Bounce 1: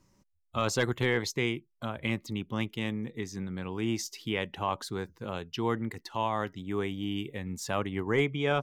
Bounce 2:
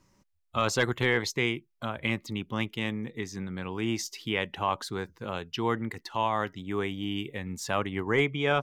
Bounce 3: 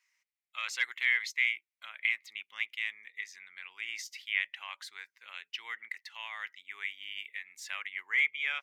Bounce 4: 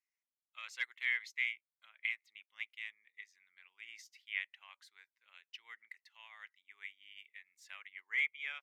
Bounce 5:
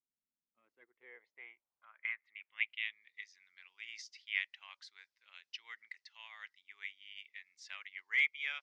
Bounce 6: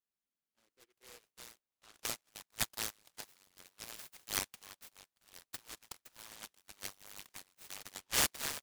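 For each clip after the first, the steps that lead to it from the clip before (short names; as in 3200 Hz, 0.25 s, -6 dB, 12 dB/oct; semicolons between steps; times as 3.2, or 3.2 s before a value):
bell 1800 Hz +4 dB 2.9 oct
resonant high-pass 2100 Hz, resonance Q 4.3; gain -8.5 dB
upward expander 1.5:1, over -52 dBFS; gain -5.5 dB
low-pass sweep 240 Hz -> 5200 Hz, 0.5–3.24; gain +1.5 dB
noise-modulated delay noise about 2100 Hz, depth 0.23 ms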